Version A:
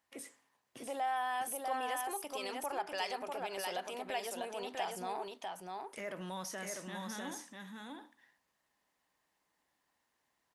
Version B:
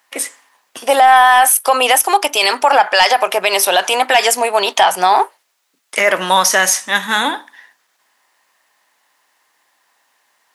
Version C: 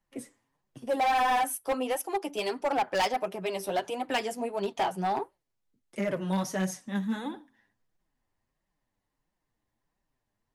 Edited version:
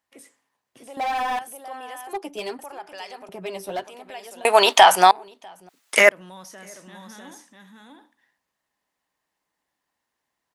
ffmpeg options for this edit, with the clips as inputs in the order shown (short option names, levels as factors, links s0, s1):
-filter_complex "[2:a]asplit=3[s0][s1][s2];[1:a]asplit=2[s3][s4];[0:a]asplit=6[s5][s6][s7][s8][s9][s10];[s5]atrim=end=0.972[s11];[s0]atrim=start=0.968:end=1.392[s12];[s6]atrim=start=1.388:end=2.132[s13];[s1]atrim=start=2.128:end=2.592[s14];[s7]atrim=start=2.588:end=3.292[s15];[s2]atrim=start=3.288:end=3.842[s16];[s8]atrim=start=3.838:end=4.452[s17];[s3]atrim=start=4.448:end=5.112[s18];[s9]atrim=start=5.108:end=5.692[s19];[s4]atrim=start=5.688:end=6.092[s20];[s10]atrim=start=6.088[s21];[s11][s12]acrossfade=d=0.004:c1=hsin:c2=hsin[s22];[s22][s13]acrossfade=d=0.004:c1=hsin:c2=hsin[s23];[s23][s14]acrossfade=d=0.004:c1=hsin:c2=hsin[s24];[s24][s15]acrossfade=d=0.004:c1=hsin:c2=hsin[s25];[s25][s16]acrossfade=d=0.004:c1=hsin:c2=hsin[s26];[s26][s17]acrossfade=d=0.004:c1=hsin:c2=hsin[s27];[s27][s18]acrossfade=d=0.004:c1=hsin:c2=hsin[s28];[s28][s19]acrossfade=d=0.004:c1=hsin:c2=hsin[s29];[s29][s20]acrossfade=d=0.004:c1=hsin:c2=hsin[s30];[s30][s21]acrossfade=d=0.004:c1=hsin:c2=hsin"